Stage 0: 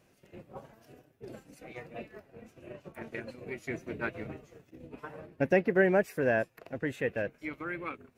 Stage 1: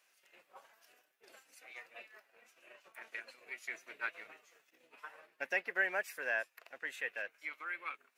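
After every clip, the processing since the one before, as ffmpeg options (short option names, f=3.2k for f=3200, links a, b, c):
-af "highpass=1.3k"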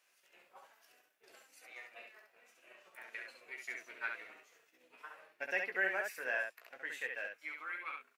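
-af "aecho=1:1:16|68:0.447|0.631,volume=-2.5dB"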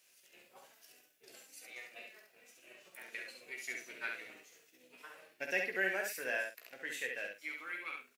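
-filter_complex "[0:a]equalizer=f=1.1k:w=0.58:g=-14,asplit=2[a][b];[b]adelay=48,volume=-11dB[c];[a][c]amix=inputs=2:normalize=0,volume=9.5dB"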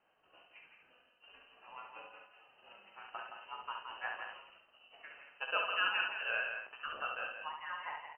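-filter_complex "[0:a]equalizer=f=97:w=0.91:g=14,asplit=2[a][b];[b]adelay=169.1,volume=-6dB,highshelf=f=4k:g=-3.8[c];[a][c]amix=inputs=2:normalize=0,lowpass=f=2.7k:t=q:w=0.5098,lowpass=f=2.7k:t=q:w=0.6013,lowpass=f=2.7k:t=q:w=0.9,lowpass=f=2.7k:t=q:w=2.563,afreqshift=-3200"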